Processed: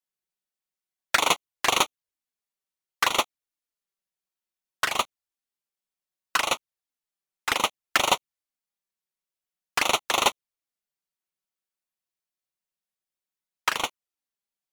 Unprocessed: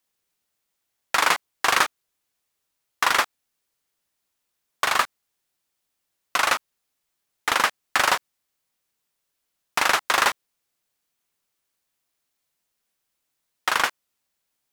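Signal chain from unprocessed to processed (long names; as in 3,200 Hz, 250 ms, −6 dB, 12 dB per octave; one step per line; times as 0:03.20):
flanger swept by the level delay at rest 5.4 ms, full sweep at −18.5 dBFS
expander for the loud parts 2.5 to 1, over −33 dBFS
level +5.5 dB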